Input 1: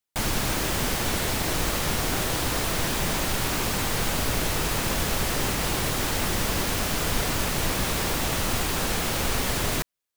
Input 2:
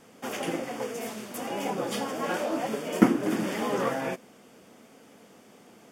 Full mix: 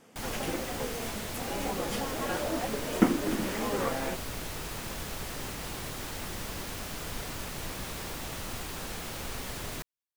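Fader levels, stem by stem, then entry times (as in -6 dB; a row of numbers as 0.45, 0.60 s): -12.0, -3.5 dB; 0.00, 0.00 s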